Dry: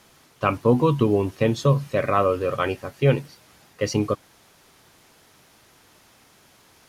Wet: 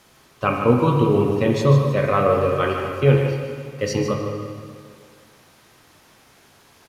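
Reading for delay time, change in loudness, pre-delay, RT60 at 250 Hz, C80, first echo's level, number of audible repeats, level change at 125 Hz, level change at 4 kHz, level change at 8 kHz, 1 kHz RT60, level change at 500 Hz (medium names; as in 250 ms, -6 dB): 151 ms, +3.0 dB, 8 ms, 2.1 s, 2.5 dB, -8.5 dB, 1, +4.5 dB, +2.0 dB, +1.0 dB, 2.0 s, +3.0 dB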